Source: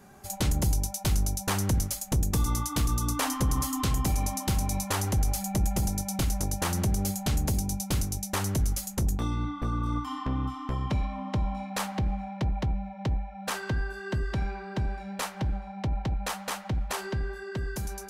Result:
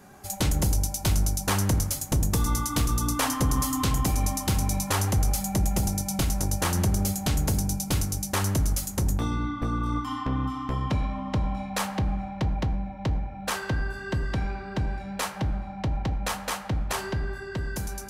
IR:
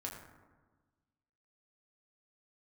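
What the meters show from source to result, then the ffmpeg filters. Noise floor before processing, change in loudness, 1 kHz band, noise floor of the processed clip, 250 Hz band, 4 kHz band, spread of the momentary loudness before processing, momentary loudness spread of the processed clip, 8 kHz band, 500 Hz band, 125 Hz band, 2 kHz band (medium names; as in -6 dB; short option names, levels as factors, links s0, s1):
-42 dBFS, +2.5 dB, +2.5 dB, -38 dBFS, +2.5 dB, +3.0 dB, 6 LU, 6 LU, +3.0 dB, +2.5 dB, +2.5 dB, +3.0 dB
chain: -filter_complex "[0:a]asplit=2[s0][s1];[1:a]atrim=start_sample=2205,lowshelf=f=110:g=-10[s2];[s1][s2]afir=irnorm=-1:irlink=0,volume=0.708[s3];[s0][s3]amix=inputs=2:normalize=0"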